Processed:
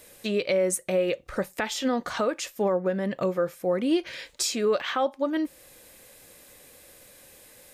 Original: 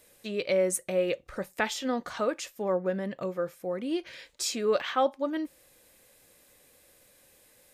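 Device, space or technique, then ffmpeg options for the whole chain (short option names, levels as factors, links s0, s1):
stacked limiters: -af "alimiter=limit=0.112:level=0:latency=1:release=227,alimiter=limit=0.0631:level=0:latency=1:release=437,volume=2.66"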